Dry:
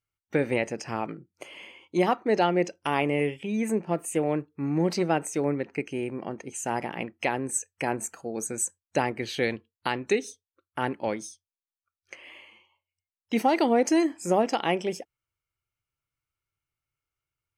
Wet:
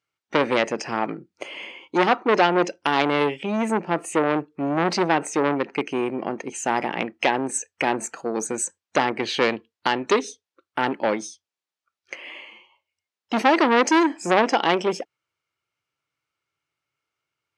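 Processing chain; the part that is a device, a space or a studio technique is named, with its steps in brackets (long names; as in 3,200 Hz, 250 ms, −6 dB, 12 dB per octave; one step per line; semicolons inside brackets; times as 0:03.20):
public-address speaker with an overloaded transformer (saturating transformer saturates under 1,500 Hz; band-pass filter 210–5,700 Hz)
level +9 dB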